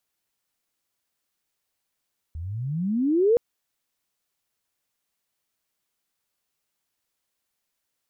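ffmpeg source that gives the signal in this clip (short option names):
-f lavfi -i "aevalsrc='pow(10,(-14.5+16.5*(t/1.02-1))/20)*sin(2*PI*75.3*1.02/(32.5*log(2)/12)*(exp(32.5*log(2)/12*t/1.02)-1))':d=1.02:s=44100"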